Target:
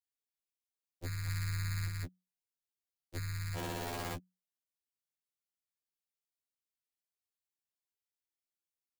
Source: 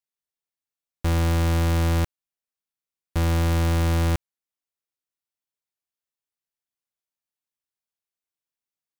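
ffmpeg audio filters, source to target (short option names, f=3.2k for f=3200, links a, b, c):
-filter_complex "[0:a]asplit=3[a][b][c];[a]afade=t=out:st=1.26:d=0.02[d];[b]acontrast=38,afade=t=in:st=1.26:d=0.02,afade=t=out:st=1.87:d=0.02[e];[c]afade=t=in:st=1.87:d=0.02[f];[d][e][f]amix=inputs=3:normalize=0,afreqshift=17,acompressor=threshold=-29dB:ratio=2,highpass=f=86:p=1,equalizer=f=1k:w=0.78:g=-8,aeval=exprs='val(0)*sin(2*PI*200*n/s)':c=same,asplit=3[g][h][i];[g]afade=t=out:st=3.55:d=0.02[j];[h]aeval=exprs='val(0)*gte(abs(val(0)),0.0447)':c=same,afade=t=in:st=3.55:d=0.02,afade=t=out:st=4.14:d=0.02[k];[i]afade=t=in:st=4.14:d=0.02[l];[j][k][l]amix=inputs=3:normalize=0,afftfilt=real='re*2*eq(mod(b,4),0)':imag='im*2*eq(mod(b,4),0)':win_size=2048:overlap=0.75"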